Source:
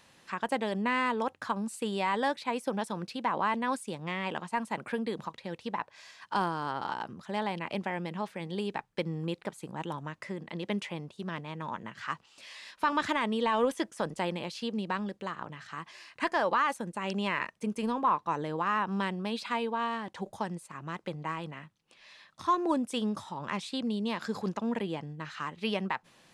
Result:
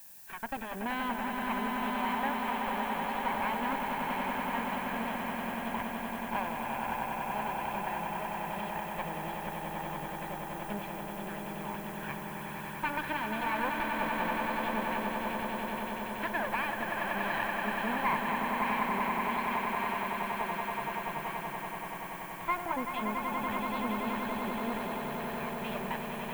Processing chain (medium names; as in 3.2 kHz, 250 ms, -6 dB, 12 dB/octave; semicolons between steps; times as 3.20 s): comb filter that takes the minimum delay 1.2 ms; low-pass 2.9 kHz 24 dB/octave; on a send: echo with a slow build-up 95 ms, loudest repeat 8, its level -7 dB; on the sum: added noise violet -49 dBFS; bass shelf 67 Hz -9 dB; trim -2.5 dB